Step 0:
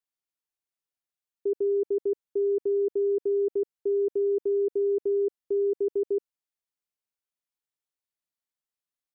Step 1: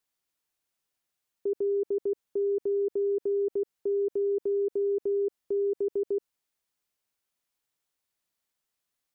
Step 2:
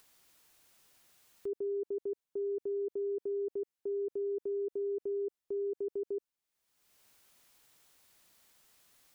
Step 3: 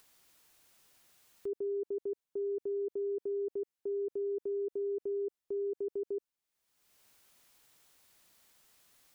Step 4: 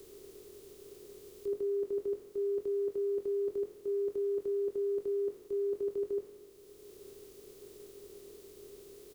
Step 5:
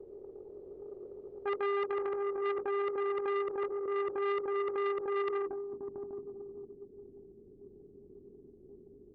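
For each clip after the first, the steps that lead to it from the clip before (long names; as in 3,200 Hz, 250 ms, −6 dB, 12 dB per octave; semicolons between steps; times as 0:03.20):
brickwall limiter −32 dBFS, peak gain reduction 11 dB; level +8.5 dB
upward compression, threshold −38 dBFS; level −7.5 dB
no processing that can be heard
compressor on every frequency bin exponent 0.2; double-tracking delay 22 ms −7 dB; multiband upward and downward expander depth 70%
feedback delay with all-pass diffusion 481 ms, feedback 44%, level −4.5 dB; low-pass filter sweep 570 Hz → 240 Hz, 0:05.12–0:05.65; saturating transformer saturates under 1,200 Hz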